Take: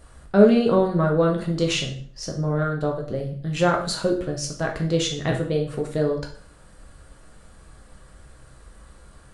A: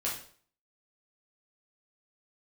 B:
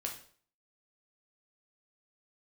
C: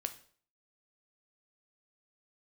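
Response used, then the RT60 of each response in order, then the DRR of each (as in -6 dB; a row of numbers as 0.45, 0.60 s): B; 0.50, 0.50, 0.50 s; -6.0, 0.5, 8.0 dB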